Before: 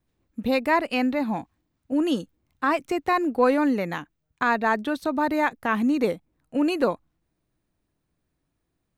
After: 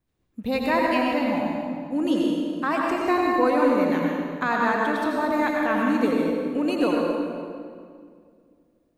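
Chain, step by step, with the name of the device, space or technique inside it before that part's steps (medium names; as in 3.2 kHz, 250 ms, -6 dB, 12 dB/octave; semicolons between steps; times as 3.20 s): stairwell (reverberation RT60 2.1 s, pre-delay 80 ms, DRR -2 dB); trim -3 dB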